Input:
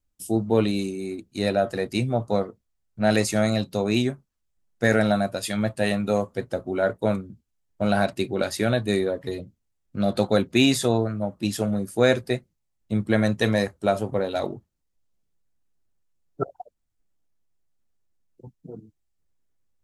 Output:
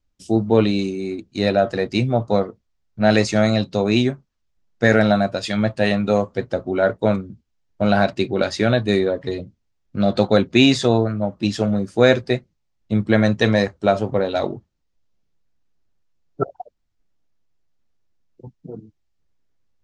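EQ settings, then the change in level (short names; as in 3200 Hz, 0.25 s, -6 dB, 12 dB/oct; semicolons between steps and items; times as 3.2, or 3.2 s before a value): LPF 6200 Hz 24 dB/oct; +5.0 dB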